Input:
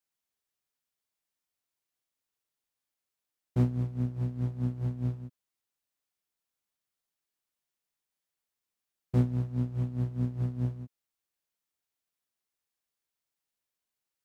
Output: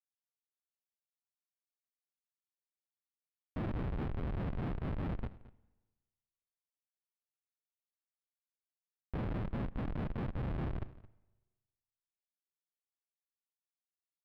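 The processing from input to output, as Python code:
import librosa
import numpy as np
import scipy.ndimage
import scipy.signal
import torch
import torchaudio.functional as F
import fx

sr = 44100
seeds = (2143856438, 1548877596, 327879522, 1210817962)

p1 = fx.highpass(x, sr, hz=80.0, slope=6)
p2 = fx.notch_comb(p1, sr, f0_hz=380.0)
p3 = fx.whisperise(p2, sr, seeds[0])
p4 = fx.low_shelf(p3, sr, hz=130.0, db=-10.5, at=(9.45, 10.37))
p5 = fx.schmitt(p4, sr, flips_db=-38.5)
p6 = fx.air_absorb(p5, sr, metres=460.0)
p7 = p6 + fx.echo_single(p6, sr, ms=220, db=-18.5, dry=0)
p8 = fx.rev_spring(p7, sr, rt60_s=1.2, pass_ms=(38, 46, 59), chirp_ms=25, drr_db=19.5)
p9 = fx.end_taper(p8, sr, db_per_s=340.0)
y = p9 * 10.0 ** (3.5 / 20.0)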